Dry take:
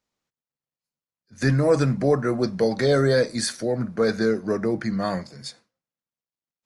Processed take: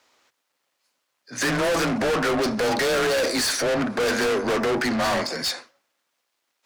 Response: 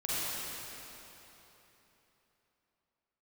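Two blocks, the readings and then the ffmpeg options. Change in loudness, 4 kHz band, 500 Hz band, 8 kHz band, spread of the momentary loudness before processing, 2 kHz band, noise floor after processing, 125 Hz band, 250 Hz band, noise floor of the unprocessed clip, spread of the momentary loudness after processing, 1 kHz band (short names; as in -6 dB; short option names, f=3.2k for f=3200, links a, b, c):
0.0 dB, +7.0 dB, -1.0 dB, +6.5 dB, 8 LU, +6.5 dB, -77 dBFS, -10.0 dB, -1.5 dB, under -85 dBFS, 5 LU, +6.0 dB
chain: -filter_complex "[0:a]afreqshift=27,asplit=2[a][b];[b]highpass=f=720:p=1,volume=30dB,asoftclip=type=tanh:threshold=-8dB[c];[a][c]amix=inputs=2:normalize=0,lowpass=f=4k:p=1,volume=-6dB,equalizer=f=180:t=o:w=0.51:g=-12,asoftclip=type=tanh:threshold=-20.5dB"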